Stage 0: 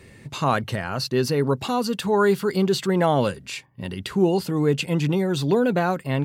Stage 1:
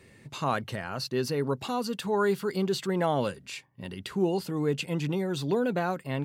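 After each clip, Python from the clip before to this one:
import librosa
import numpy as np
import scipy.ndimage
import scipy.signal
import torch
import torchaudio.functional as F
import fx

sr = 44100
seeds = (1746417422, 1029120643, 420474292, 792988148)

y = fx.low_shelf(x, sr, hz=76.0, db=-8.0)
y = F.gain(torch.from_numpy(y), -6.5).numpy()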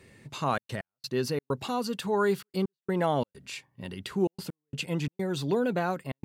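y = fx.step_gate(x, sr, bpm=130, pattern='xxxxx.x..xxx.xxx', floor_db=-60.0, edge_ms=4.5)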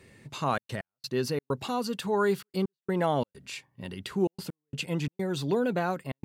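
y = x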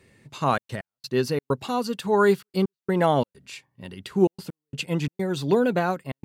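y = fx.upward_expand(x, sr, threshold_db=-42.0, expansion=1.5)
y = F.gain(torch.from_numpy(y), 8.0).numpy()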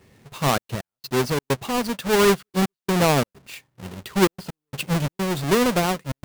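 y = fx.halfwave_hold(x, sr)
y = F.gain(torch.from_numpy(y), -2.0).numpy()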